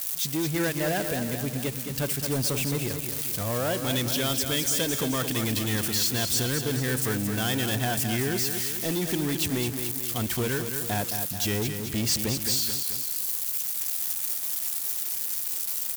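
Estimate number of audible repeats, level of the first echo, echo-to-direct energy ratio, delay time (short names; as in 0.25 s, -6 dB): 3, -7.5 dB, -6.0 dB, 0.217 s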